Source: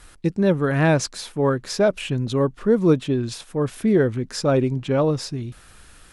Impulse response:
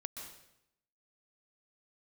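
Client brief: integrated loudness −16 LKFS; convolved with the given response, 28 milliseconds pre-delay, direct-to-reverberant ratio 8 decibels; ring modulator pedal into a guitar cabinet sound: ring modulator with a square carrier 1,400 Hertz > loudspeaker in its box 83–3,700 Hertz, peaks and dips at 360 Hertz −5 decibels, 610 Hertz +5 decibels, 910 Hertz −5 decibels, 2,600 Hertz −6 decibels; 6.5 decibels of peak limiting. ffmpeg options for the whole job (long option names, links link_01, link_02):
-filter_complex "[0:a]alimiter=limit=-12dB:level=0:latency=1,asplit=2[link_01][link_02];[1:a]atrim=start_sample=2205,adelay=28[link_03];[link_02][link_03]afir=irnorm=-1:irlink=0,volume=-6dB[link_04];[link_01][link_04]amix=inputs=2:normalize=0,aeval=exprs='val(0)*sgn(sin(2*PI*1400*n/s))':channel_layout=same,highpass=83,equalizer=frequency=360:width_type=q:width=4:gain=-5,equalizer=frequency=610:width_type=q:width=4:gain=5,equalizer=frequency=910:width_type=q:width=4:gain=-5,equalizer=frequency=2600:width_type=q:width=4:gain=-6,lowpass=frequency=3700:width=0.5412,lowpass=frequency=3700:width=1.3066,volume=6.5dB"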